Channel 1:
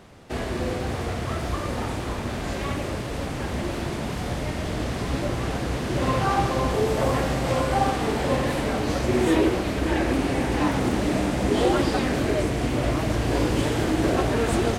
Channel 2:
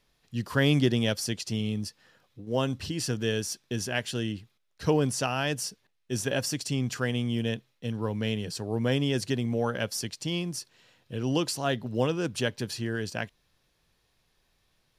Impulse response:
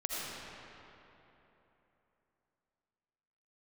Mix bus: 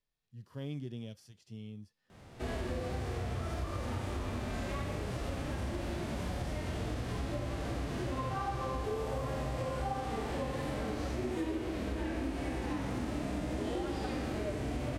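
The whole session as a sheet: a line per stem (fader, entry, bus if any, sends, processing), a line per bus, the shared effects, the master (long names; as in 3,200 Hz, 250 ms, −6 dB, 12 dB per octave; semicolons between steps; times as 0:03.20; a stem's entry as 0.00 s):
−4.5 dB, 2.10 s, send −7.5 dB, no processing
−16.5 dB, 0.00 s, no send, no processing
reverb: on, RT60 3.3 s, pre-delay 40 ms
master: low-shelf EQ 140 Hz +3 dB; harmonic and percussive parts rebalanced percussive −18 dB; downward compressor, threshold −33 dBFS, peak gain reduction 13.5 dB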